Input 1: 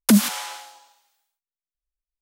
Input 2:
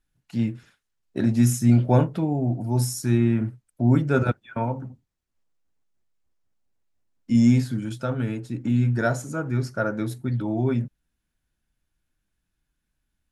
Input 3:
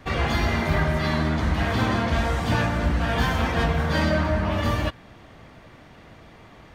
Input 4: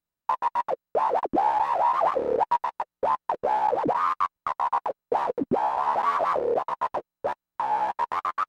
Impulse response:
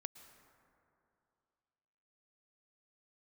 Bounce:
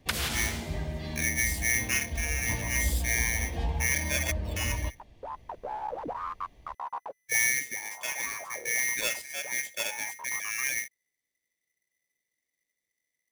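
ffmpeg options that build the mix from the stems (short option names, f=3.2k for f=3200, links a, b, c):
-filter_complex "[0:a]highpass=1.4k,acrossover=split=4200[a][b];[b]acompressor=threshold=-33dB:ratio=4:attack=1:release=60[c];[a][c]amix=inputs=2:normalize=0,volume=-1.5dB[d];[1:a]acrusher=bits=4:mode=log:mix=0:aa=0.000001,aeval=exprs='val(0)*sgn(sin(2*PI*2000*n/s))':c=same,volume=-4.5dB,asplit=2[e][f];[2:a]bandreject=f=1.4k:w=7.5,asubboost=boost=5:cutoff=67,volume=-11dB[g];[3:a]adelay=2200,volume=-11.5dB[h];[f]apad=whole_len=471260[i];[h][i]sidechaincompress=threshold=-33dB:ratio=8:attack=16:release=1360[j];[e][g]amix=inputs=2:normalize=0,equalizer=f=1.3k:w=1.4:g=-13.5,alimiter=limit=-12dB:level=0:latency=1:release=439,volume=0dB[k];[d][j][k]amix=inputs=3:normalize=0"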